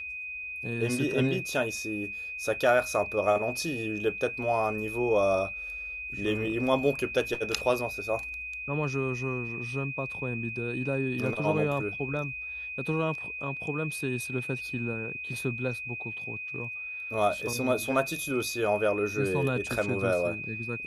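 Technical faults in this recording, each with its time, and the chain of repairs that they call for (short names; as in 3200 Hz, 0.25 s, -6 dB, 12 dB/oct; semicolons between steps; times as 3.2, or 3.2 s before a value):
tone 2500 Hz -35 dBFS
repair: notch 2500 Hz, Q 30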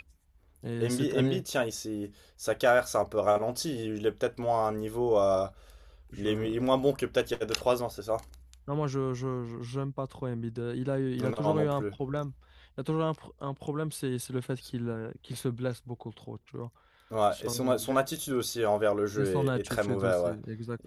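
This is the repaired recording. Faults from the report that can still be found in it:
none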